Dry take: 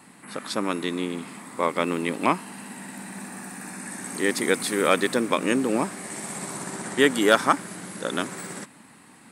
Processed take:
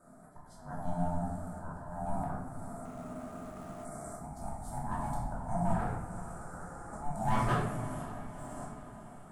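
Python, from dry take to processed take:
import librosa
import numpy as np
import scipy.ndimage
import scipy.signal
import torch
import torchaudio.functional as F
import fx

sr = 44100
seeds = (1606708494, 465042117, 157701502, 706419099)

y = scipy.signal.sosfilt(scipy.signal.cheby1(2, 1.0, [820.0, 7500.0], 'bandstop', fs=sr, output='sos'), x)
y = fx.high_shelf(y, sr, hz=5100.0, db=-10.0)
y = fx.auto_swell(y, sr, attack_ms=405.0)
y = np.clip(10.0 ** (20.0 / 20.0) * y, -1.0, 1.0) / 10.0 ** (20.0 / 20.0)
y = fx.cheby_ripple_highpass(y, sr, hz=270.0, ripple_db=9, at=(5.73, 6.93))
y = y * np.sin(2.0 * np.pi * 440.0 * np.arange(len(y)) / sr)
y = fx.echo_diffused(y, sr, ms=511, feedback_pct=60, wet_db=-14.5)
y = fx.room_shoebox(y, sr, seeds[0], volume_m3=400.0, walls='mixed', distance_m=2.7)
y = fx.running_max(y, sr, window=5, at=(2.85, 3.85))
y = F.gain(torch.from_numpy(y), -8.0).numpy()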